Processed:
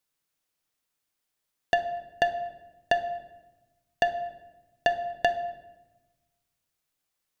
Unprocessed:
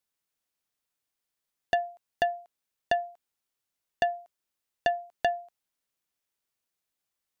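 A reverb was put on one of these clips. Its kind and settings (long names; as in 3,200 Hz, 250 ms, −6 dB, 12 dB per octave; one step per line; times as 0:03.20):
rectangular room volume 560 cubic metres, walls mixed, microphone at 0.53 metres
level +3 dB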